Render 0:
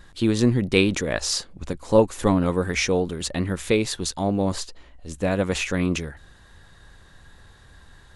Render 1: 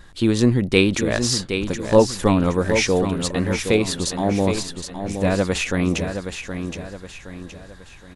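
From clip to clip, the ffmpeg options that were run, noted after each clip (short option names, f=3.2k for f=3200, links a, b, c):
-af "aecho=1:1:769|1538|2307|3076|3845:0.398|0.163|0.0669|0.0274|0.0112,volume=2.5dB"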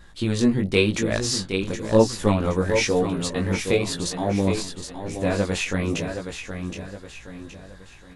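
-af "flanger=delay=17.5:depth=3.7:speed=0.97"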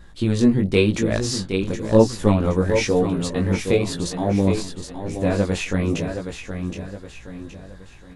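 -af "tiltshelf=f=720:g=3,volume=1dB"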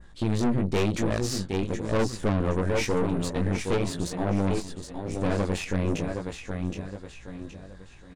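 -af "adynamicequalizer=threshold=0.00708:dfrequency=4300:dqfactor=1:tfrequency=4300:tqfactor=1:attack=5:release=100:ratio=0.375:range=2:mode=cutabove:tftype=bell,aresample=22050,aresample=44100,aeval=exprs='(tanh(11.2*val(0)+0.75)-tanh(0.75))/11.2':c=same"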